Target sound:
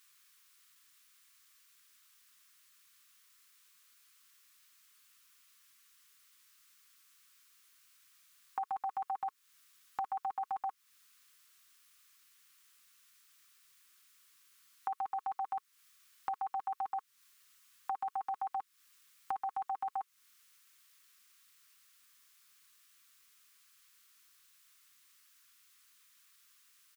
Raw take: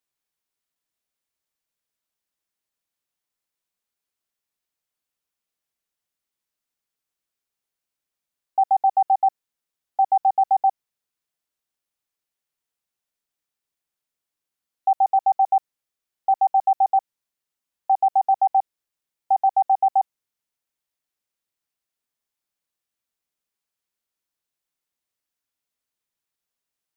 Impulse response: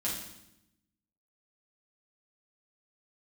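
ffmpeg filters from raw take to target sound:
-af "firequalizer=gain_entry='entry(420,0);entry(610,-27);entry(1100,14)':delay=0.05:min_phase=1,acompressor=threshold=-43dB:ratio=4,volume=6dB"

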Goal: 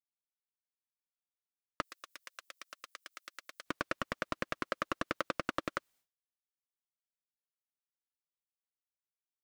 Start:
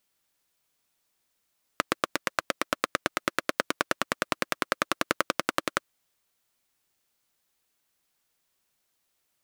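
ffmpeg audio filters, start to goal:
ffmpeg -i in.wav -filter_complex "[0:a]agate=range=-33dB:threshold=-56dB:ratio=3:detection=peak,asoftclip=type=tanh:threshold=-17dB,asettb=1/sr,asplit=3[link_01][link_02][link_03];[link_01]atrim=end=1.824[link_04];[link_02]atrim=start=1.82:end=3.66,asetpts=PTS-STARTPTS,afade=type=in:duration=0.004:curve=qsin,afade=type=out:start_time=1.836:duration=0.004:curve=qsin,aderivative[link_05];[link_03]atrim=start=3.656[link_06];[link_04][link_05]acrossfade=duration=0.004:curve1=hsin:curve2=qsin[link_07];[link_07][link_06]acrossfade=duration=0.004:curve1=qsin:curve2=hsin,acrossover=split=6100[link_08][link_09];[link_09]acompressor=threshold=-51dB:ratio=4:attack=1:release=60[link_10];[link_08][link_10]amix=inputs=2:normalize=0,volume=-2.5dB" out.wav

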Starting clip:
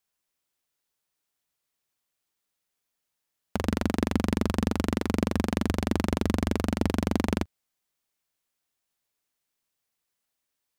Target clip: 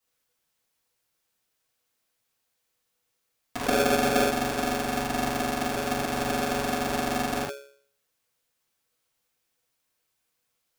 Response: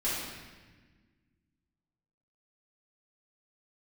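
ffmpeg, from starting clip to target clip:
-filter_complex "[0:a]bandreject=frequency=67.53:width_type=h:width=4,bandreject=frequency=135.06:width_type=h:width=4,alimiter=limit=-19dB:level=0:latency=1:release=60,asettb=1/sr,asplit=3[link_01][link_02][link_03];[link_01]atrim=end=3.644[link_04];[link_02]atrim=start=3.64:end=4.24,asetpts=PTS-STARTPTS,afade=type=in:duration=0.004:curve=qsin,afade=type=out:start_time=0.596:duration=0.004:curve=qsin,lowshelf=frequency=150:gain=12[link_05];[link_03]atrim=start=4.236[link_06];[link_04][link_05]acrossfade=duration=0.004:curve1=hsin:curve2=qsin[link_07];[link_07][link_06]acrossfade=duration=0.004:curve1=qsin:curve2=hsin[link_08];[1:a]atrim=start_sample=2205,atrim=end_sample=3528[link_09];[link_08][link_09]afir=irnorm=-1:irlink=0,aeval=exprs='val(0)*sgn(sin(2*PI*490*n/s))':channel_layout=same"

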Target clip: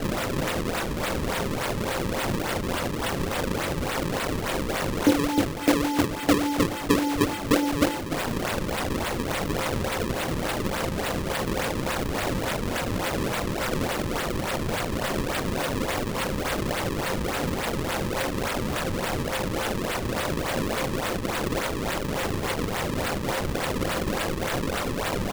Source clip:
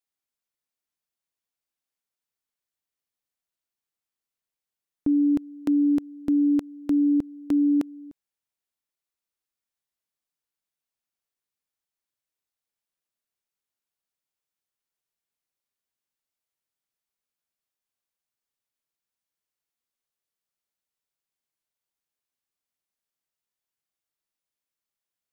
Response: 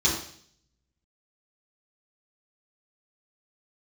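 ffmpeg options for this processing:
-filter_complex "[0:a]aeval=exprs='val(0)+0.5*0.0224*sgn(val(0))':channel_layout=same,acrossover=split=190|280|640[link_01][link_02][link_03][link_04];[link_04]acrusher=bits=2:mode=log:mix=0:aa=0.000001[link_05];[link_01][link_02][link_03][link_05]amix=inputs=4:normalize=0,asoftclip=type=tanh:threshold=-18.5dB,equalizer=frequency=125:width_type=o:width=1:gain=-5,equalizer=frequency=250:width_type=o:width=1:gain=-8,equalizer=frequency=500:width_type=o:width=1:gain=7,equalizer=frequency=1000:width_type=o:width=1:gain=-5,asplit=2[link_06][link_07];[link_07]adelay=120,lowpass=frequency=1100:poles=1,volume=-12dB,asplit=2[link_08][link_09];[link_09]adelay=120,lowpass=frequency=1100:poles=1,volume=0.49,asplit=2[link_10][link_11];[link_11]adelay=120,lowpass=frequency=1100:poles=1,volume=0.49,asplit=2[link_12][link_13];[link_13]adelay=120,lowpass=frequency=1100:poles=1,volume=0.49,asplit=2[link_14][link_15];[link_15]adelay=120,lowpass=frequency=1100:poles=1,volume=0.49[link_16];[link_06][link_08][link_10][link_12][link_14][link_16]amix=inputs=6:normalize=0[link_17];[1:a]atrim=start_sample=2205,asetrate=70560,aresample=44100[link_18];[link_17][link_18]afir=irnorm=-1:irlink=0,acrusher=samples=35:mix=1:aa=0.000001:lfo=1:lforange=56:lforate=3.5,volume=4.5dB"

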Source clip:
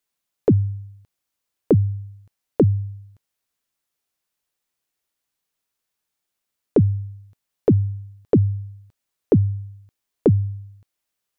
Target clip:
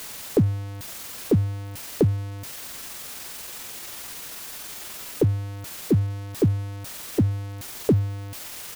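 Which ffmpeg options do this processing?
ffmpeg -i in.wav -af "aeval=exprs='val(0)+0.5*0.0473*sgn(val(0))':channel_layout=same,atempo=1.3,volume=-4dB" out.wav

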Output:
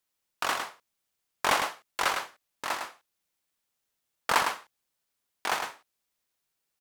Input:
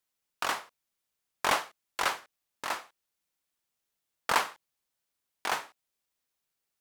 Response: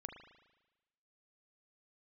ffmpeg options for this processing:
-af "aecho=1:1:106:0.501,volume=1.5dB"

